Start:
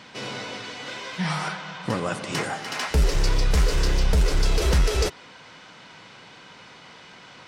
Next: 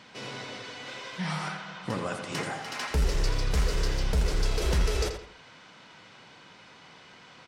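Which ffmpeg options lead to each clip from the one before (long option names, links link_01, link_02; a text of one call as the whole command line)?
ffmpeg -i in.wav -filter_complex "[0:a]asplit=2[link_01][link_02];[link_02]adelay=83,lowpass=frequency=4800:poles=1,volume=-7dB,asplit=2[link_03][link_04];[link_04]adelay=83,lowpass=frequency=4800:poles=1,volume=0.35,asplit=2[link_05][link_06];[link_06]adelay=83,lowpass=frequency=4800:poles=1,volume=0.35,asplit=2[link_07][link_08];[link_08]adelay=83,lowpass=frequency=4800:poles=1,volume=0.35[link_09];[link_01][link_03][link_05][link_07][link_09]amix=inputs=5:normalize=0,volume=-6dB" out.wav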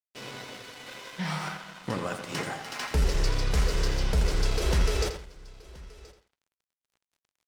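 ffmpeg -i in.wav -af "agate=range=-33dB:threshold=-48dB:ratio=3:detection=peak,aeval=exprs='sgn(val(0))*max(abs(val(0))-0.00531,0)':channel_layout=same,aecho=1:1:1026:0.0794,volume=1.5dB" out.wav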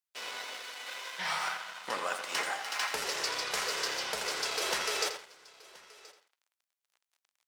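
ffmpeg -i in.wav -af "highpass=730,volume=2.5dB" out.wav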